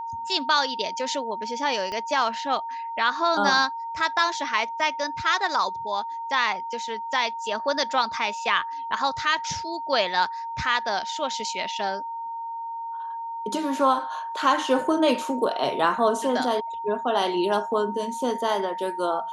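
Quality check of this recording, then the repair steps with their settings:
tone 920 Hz -30 dBFS
1.92 pop -20 dBFS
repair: de-click; notch 920 Hz, Q 30

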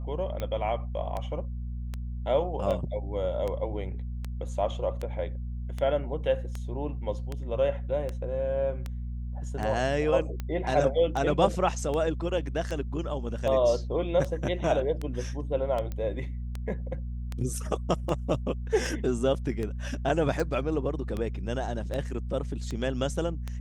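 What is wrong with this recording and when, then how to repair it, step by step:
hum 60 Hz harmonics 4 -34 dBFS
tick 78 rpm -20 dBFS
15.92 pop -22 dBFS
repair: de-click; de-hum 60 Hz, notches 4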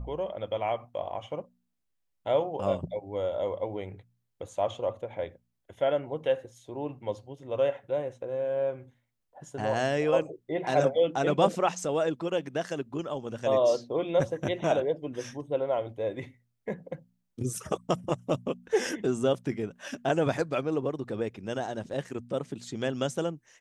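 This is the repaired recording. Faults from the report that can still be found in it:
none

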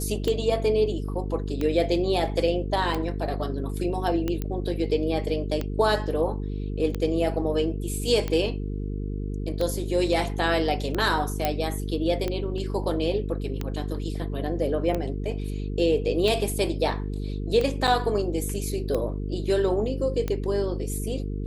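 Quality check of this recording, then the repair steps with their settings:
buzz 50 Hz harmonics 9 -30 dBFS
tick 45 rpm -15 dBFS
4.42 pop -16 dBFS
11.45 pop -9 dBFS
17.87–17.88 gap 7.2 ms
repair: de-click; de-hum 50 Hz, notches 9; interpolate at 17.87, 7.2 ms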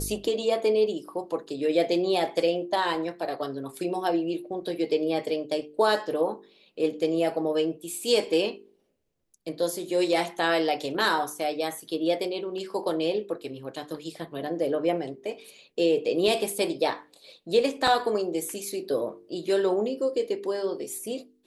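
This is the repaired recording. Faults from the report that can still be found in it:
none

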